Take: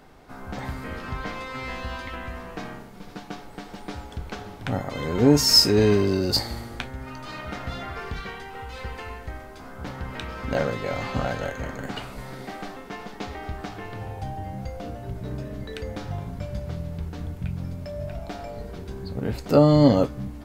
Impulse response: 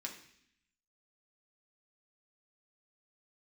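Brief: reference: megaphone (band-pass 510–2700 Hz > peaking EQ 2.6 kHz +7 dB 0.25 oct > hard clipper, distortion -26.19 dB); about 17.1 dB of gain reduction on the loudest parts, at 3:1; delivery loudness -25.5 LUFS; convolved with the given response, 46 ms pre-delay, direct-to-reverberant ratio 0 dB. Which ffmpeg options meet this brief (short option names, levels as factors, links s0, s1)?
-filter_complex "[0:a]acompressor=threshold=0.0178:ratio=3,asplit=2[s0][s1];[1:a]atrim=start_sample=2205,adelay=46[s2];[s1][s2]afir=irnorm=-1:irlink=0,volume=1.19[s3];[s0][s3]amix=inputs=2:normalize=0,highpass=510,lowpass=2700,equalizer=f=2600:t=o:w=0.25:g=7,asoftclip=type=hard:threshold=0.0398,volume=5.01"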